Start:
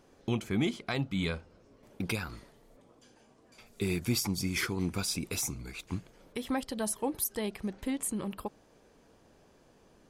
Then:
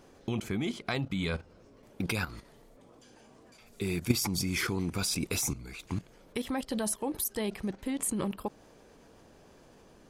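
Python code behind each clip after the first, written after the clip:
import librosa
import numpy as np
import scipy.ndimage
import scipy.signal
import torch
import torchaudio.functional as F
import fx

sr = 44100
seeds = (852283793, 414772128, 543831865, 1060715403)

y = fx.level_steps(x, sr, step_db=13)
y = y * librosa.db_to_amplitude(8.0)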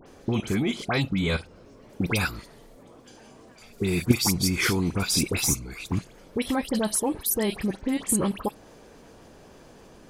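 y = fx.dispersion(x, sr, late='highs', ms=66.0, hz=2100.0)
y = y * librosa.db_to_amplitude(7.0)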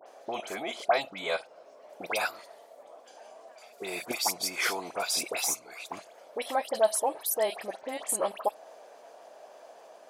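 y = fx.highpass_res(x, sr, hz=650.0, q=4.9)
y = y * librosa.db_to_amplitude(-4.5)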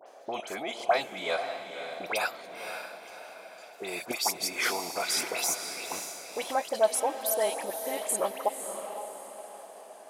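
y = fx.echo_diffused(x, sr, ms=533, feedback_pct=42, wet_db=-7.5)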